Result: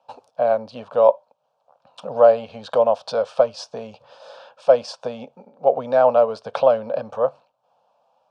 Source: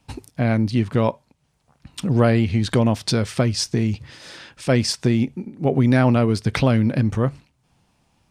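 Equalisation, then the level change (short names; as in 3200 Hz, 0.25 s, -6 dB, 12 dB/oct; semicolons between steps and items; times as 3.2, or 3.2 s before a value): resonant high-pass 540 Hz, resonance Q 3.7; LPF 2700 Hz 12 dB/oct; fixed phaser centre 830 Hz, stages 4; +2.0 dB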